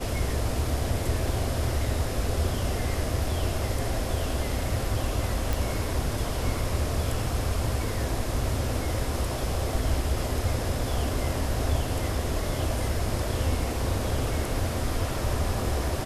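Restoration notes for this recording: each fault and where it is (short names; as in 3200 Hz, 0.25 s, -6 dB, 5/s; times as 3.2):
5.53 pop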